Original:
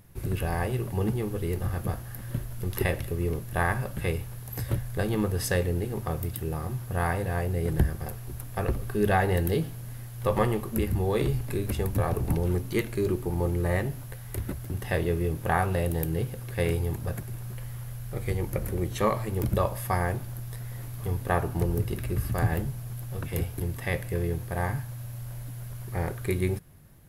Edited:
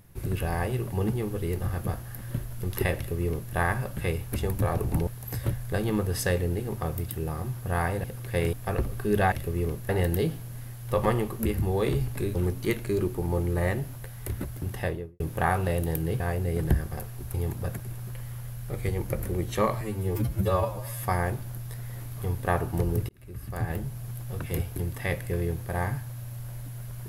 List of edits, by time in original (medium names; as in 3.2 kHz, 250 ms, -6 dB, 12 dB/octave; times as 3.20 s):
2.96–3.53 s: copy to 9.22 s
7.29–8.43 s: swap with 16.28–16.77 s
11.68–12.43 s: move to 4.32 s
14.81–15.28 s: studio fade out
19.24–19.85 s: stretch 2×
21.91–22.86 s: fade in